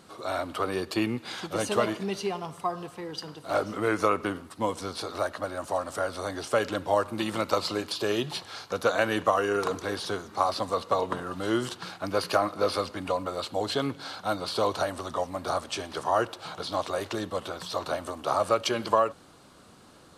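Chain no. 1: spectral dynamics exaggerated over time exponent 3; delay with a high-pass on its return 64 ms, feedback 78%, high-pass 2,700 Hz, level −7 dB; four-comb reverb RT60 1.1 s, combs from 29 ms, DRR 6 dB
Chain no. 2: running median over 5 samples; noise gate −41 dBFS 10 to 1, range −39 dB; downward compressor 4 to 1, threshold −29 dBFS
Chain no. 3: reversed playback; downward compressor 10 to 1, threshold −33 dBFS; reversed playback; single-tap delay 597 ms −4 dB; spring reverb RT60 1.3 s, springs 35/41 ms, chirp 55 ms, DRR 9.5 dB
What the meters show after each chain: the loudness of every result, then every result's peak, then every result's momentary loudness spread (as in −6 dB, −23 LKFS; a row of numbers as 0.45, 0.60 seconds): −36.0, −34.5, −36.5 LKFS; −15.0, −15.5, −20.0 dBFS; 18, 4, 2 LU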